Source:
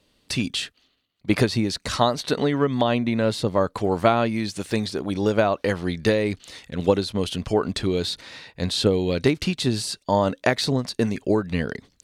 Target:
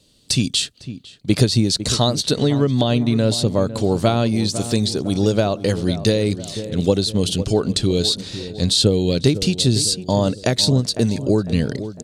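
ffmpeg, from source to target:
ffmpeg -i in.wav -filter_complex "[0:a]equalizer=frequency=125:width_type=o:width=1:gain=6,equalizer=frequency=1000:width_type=o:width=1:gain=-7,equalizer=frequency=2000:width_type=o:width=1:gain=-8,equalizer=frequency=4000:width_type=o:width=1:gain=5,equalizer=frequency=8000:width_type=o:width=1:gain=8,asplit=2[link_01][link_02];[link_02]adelay=503,lowpass=frequency=1300:poles=1,volume=-13dB,asplit=2[link_03][link_04];[link_04]adelay=503,lowpass=frequency=1300:poles=1,volume=0.5,asplit=2[link_05][link_06];[link_06]adelay=503,lowpass=frequency=1300:poles=1,volume=0.5,asplit=2[link_07][link_08];[link_08]adelay=503,lowpass=frequency=1300:poles=1,volume=0.5,asplit=2[link_09][link_10];[link_10]adelay=503,lowpass=frequency=1300:poles=1,volume=0.5[link_11];[link_01][link_03][link_05][link_07][link_09][link_11]amix=inputs=6:normalize=0,asplit=2[link_12][link_13];[link_13]alimiter=limit=-14dB:level=0:latency=1:release=277,volume=-2.5dB[link_14];[link_12][link_14]amix=inputs=2:normalize=0" out.wav

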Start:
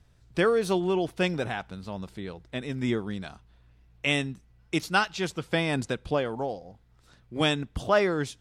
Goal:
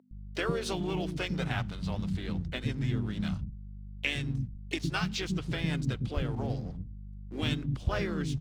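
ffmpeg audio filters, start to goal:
ffmpeg -i in.wav -filter_complex "[0:a]lowpass=4800,aemphasis=mode=production:type=75kf,agate=range=-19dB:threshold=-49dB:ratio=16:detection=peak,bandreject=frequency=50:width_type=h:width=6,bandreject=frequency=100:width_type=h:width=6,bandreject=frequency=150:width_type=h:width=6,asubboost=boost=7:cutoff=220,acompressor=threshold=-27dB:ratio=10,asplit=3[link_01][link_02][link_03];[link_02]asetrate=37084,aresample=44100,atempo=1.18921,volume=-6dB[link_04];[link_03]asetrate=52444,aresample=44100,atempo=0.840896,volume=-15dB[link_05];[link_01][link_04][link_05]amix=inputs=3:normalize=0,aeval=exprs='sgn(val(0))*max(abs(val(0))-0.00211,0)':channel_layout=same,aeval=exprs='val(0)+0.00794*(sin(2*PI*50*n/s)+sin(2*PI*2*50*n/s)/2+sin(2*PI*3*50*n/s)/3+sin(2*PI*4*50*n/s)/4+sin(2*PI*5*50*n/s)/5)':channel_layout=same,acrossover=split=290[link_06][link_07];[link_06]adelay=110[link_08];[link_08][link_07]amix=inputs=2:normalize=0" out.wav

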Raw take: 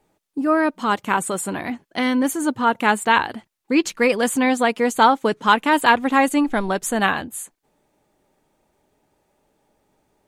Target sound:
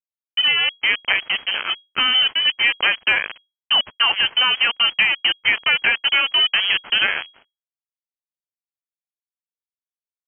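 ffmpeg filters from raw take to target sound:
ffmpeg -i in.wav -af "acompressor=threshold=-17dB:ratio=20,acrusher=bits=3:mix=0:aa=0.5,aeval=exprs='sgn(val(0))*max(abs(val(0))-0.00316,0)':channel_layout=same,lowpass=frequency=2800:width_type=q:width=0.5098,lowpass=frequency=2800:width_type=q:width=0.6013,lowpass=frequency=2800:width_type=q:width=0.9,lowpass=frequency=2800:width_type=q:width=2.563,afreqshift=-3300,volume=4dB" out.wav

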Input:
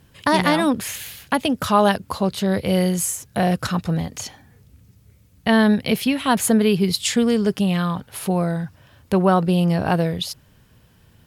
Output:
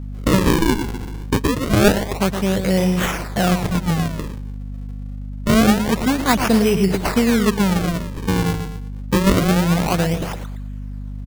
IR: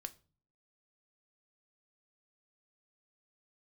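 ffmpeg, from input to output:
-af "aecho=1:1:116|232|348:0.398|0.115|0.0335,acrusher=samples=40:mix=1:aa=0.000001:lfo=1:lforange=64:lforate=0.26,aeval=exprs='val(0)+0.0355*(sin(2*PI*50*n/s)+sin(2*PI*2*50*n/s)/2+sin(2*PI*3*50*n/s)/3+sin(2*PI*4*50*n/s)/4+sin(2*PI*5*50*n/s)/5)':channel_layout=same,volume=1dB"

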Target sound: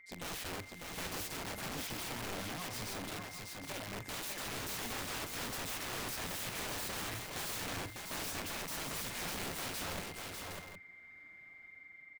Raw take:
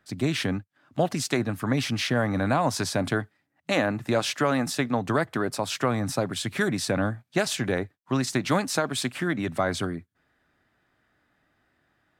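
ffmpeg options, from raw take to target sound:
ffmpeg -i in.wav -filter_complex "[0:a]dynaudnorm=framelen=130:gausssize=11:maxgain=12dB,alimiter=limit=-9.5dB:level=0:latency=1:release=119,asettb=1/sr,asplit=3[link_01][link_02][link_03];[link_01]atrim=end=1.674[link_04];[link_02]atrim=start=1.67:end=3.96,asetpts=PTS-STARTPTS,afade=type=in:duration=0.004:curve=qsin,afade=type=out:start_time=2.286:duration=0.004:curve=qsin,acompressor=threshold=-25dB:ratio=16[link_05];[link_03]atrim=start=3.956[link_06];[link_04][link_05]acrossfade=duration=0.004:curve1=hsin:curve2=qsin[link_07];[link_07][link_06]acrossfade=duration=0.004:curve1=qsin:curve2=hsin,asoftclip=type=tanh:threshold=-19dB,flanger=delay=0.8:depth=5.9:regen=54:speed=1.8:shape=sinusoidal,aeval=exprs='val(0)+0.00398*sin(2*PI*2100*n/s)':channel_layout=same,flanger=delay=3.3:depth=9.5:regen=38:speed=0.59:shape=triangular,tremolo=f=180:d=0.571,aeval=exprs='(mod(59.6*val(0)+1,2)-1)/59.6':channel_layout=same,aecho=1:1:41|412|599|763:0.178|0.168|0.631|0.316,volume=-1.5dB" out.wav

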